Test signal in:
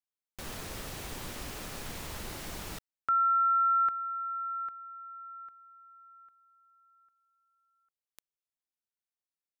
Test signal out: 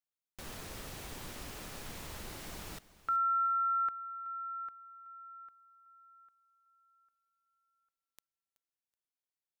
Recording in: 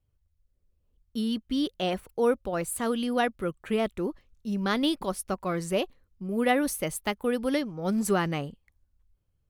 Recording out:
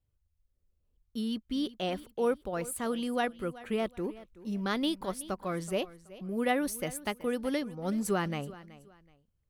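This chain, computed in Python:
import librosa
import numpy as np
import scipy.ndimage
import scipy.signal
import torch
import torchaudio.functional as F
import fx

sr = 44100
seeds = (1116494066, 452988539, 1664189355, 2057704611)

y = fx.echo_feedback(x, sr, ms=376, feedback_pct=28, wet_db=-18)
y = y * librosa.db_to_amplitude(-4.5)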